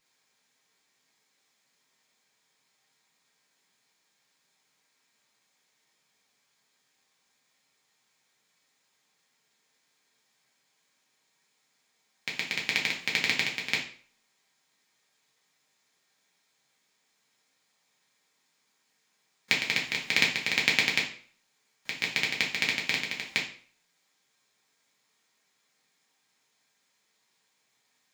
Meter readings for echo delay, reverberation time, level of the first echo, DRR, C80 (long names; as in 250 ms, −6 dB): no echo audible, 0.50 s, no echo audible, −3.0 dB, 12.5 dB